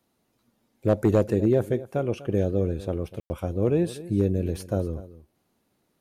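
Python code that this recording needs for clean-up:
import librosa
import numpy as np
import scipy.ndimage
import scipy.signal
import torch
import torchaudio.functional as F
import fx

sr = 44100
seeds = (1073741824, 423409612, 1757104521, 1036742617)

y = fx.fix_declip(x, sr, threshold_db=-12.0)
y = fx.fix_ambience(y, sr, seeds[0], print_start_s=5.31, print_end_s=5.81, start_s=3.2, end_s=3.3)
y = fx.fix_echo_inverse(y, sr, delay_ms=246, level_db=-17.0)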